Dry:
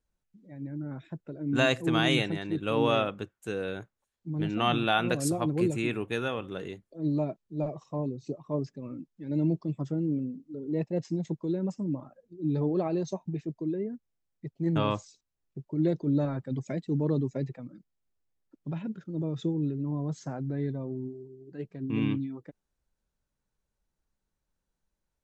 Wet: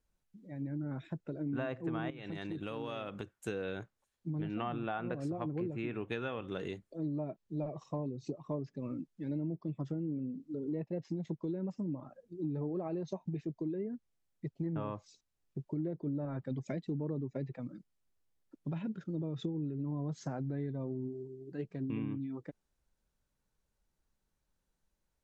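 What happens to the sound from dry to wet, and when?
2.1–3.34 compressor 8:1, threshold -36 dBFS
whole clip: treble ducked by the level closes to 1500 Hz, closed at -23 dBFS; compressor 6:1, threshold -35 dBFS; gain +1 dB

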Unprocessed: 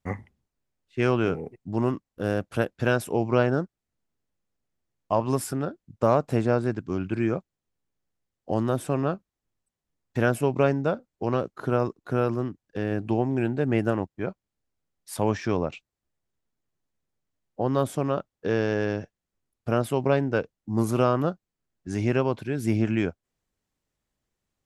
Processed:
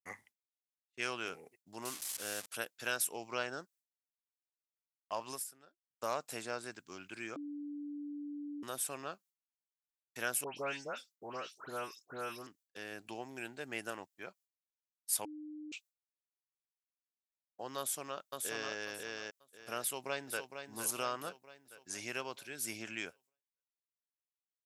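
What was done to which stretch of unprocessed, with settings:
1.85–2.46 delta modulation 64 kbps, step -34.5 dBFS
5.3–6.04 dip -16 dB, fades 0.14 s
7.36–8.63 bleep 291 Hz -17 dBFS
10.44–12.47 dispersion highs, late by 0.135 s, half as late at 2300 Hz
15.25–15.72 bleep 303 Hz -21 dBFS
17.78–18.76 echo throw 0.54 s, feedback 25%, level -3 dB
19.81–20.55 echo throw 0.46 s, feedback 55%, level -8 dB
whole clip: expander -44 dBFS; differentiator; gain +4.5 dB

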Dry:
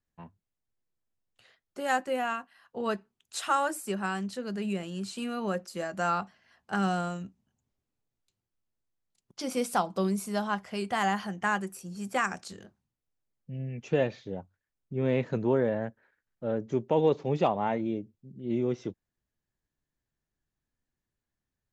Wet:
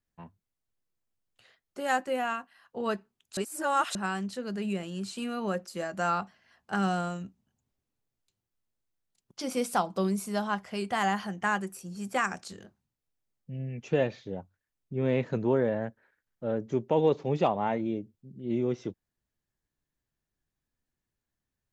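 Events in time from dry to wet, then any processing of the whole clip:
3.37–3.95 reverse

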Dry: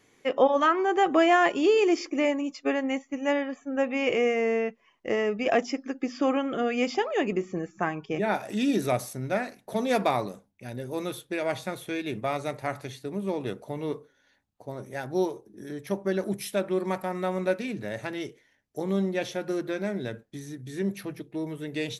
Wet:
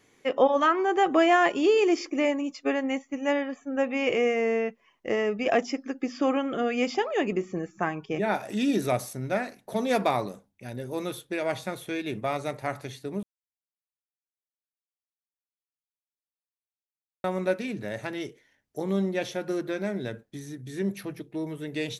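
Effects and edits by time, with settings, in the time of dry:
13.23–17.24 mute

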